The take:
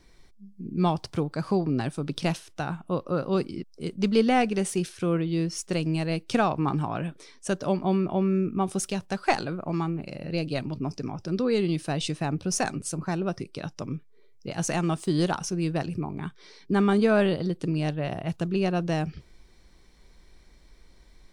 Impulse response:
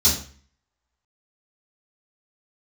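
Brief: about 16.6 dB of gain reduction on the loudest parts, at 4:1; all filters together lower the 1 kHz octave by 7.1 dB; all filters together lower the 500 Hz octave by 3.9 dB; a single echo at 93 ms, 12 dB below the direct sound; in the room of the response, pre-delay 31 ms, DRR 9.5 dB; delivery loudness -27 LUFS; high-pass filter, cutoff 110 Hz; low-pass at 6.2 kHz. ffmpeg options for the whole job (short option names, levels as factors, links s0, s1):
-filter_complex "[0:a]highpass=110,lowpass=6200,equalizer=f=500:t=o:g=-3,equalizer=f=1000:t=o:g=-9,acompressor=threshold=0.00891:ratio=4,aecho=1:1:93:0.251,asplit=2[s0][s1];[1:a]atrim=start_sample=2205,adelay=31[s2];[s1][s2]afir=irnorm=-1:irlink=0,volume=0.0708[s3];[s0][s3]amix=inputs=2:normalize=0,volume=5.31"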